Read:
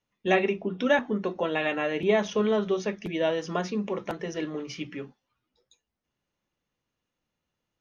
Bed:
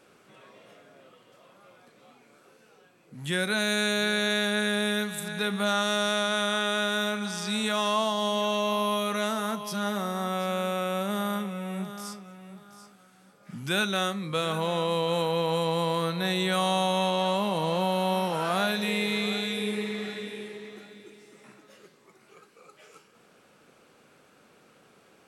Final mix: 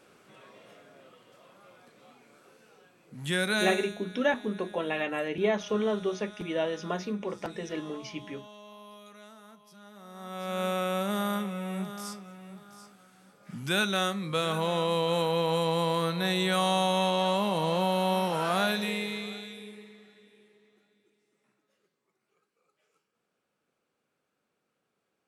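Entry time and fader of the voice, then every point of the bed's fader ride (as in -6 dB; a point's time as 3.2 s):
3.35 s, -3.5 dB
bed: 3.62 s -0.5 dB
4 s -22.5 dB
9.9 s -22.5 dB
10.64 s -0.5 dB
18.72 s -0.5 dB
20.07 s -21.5 dB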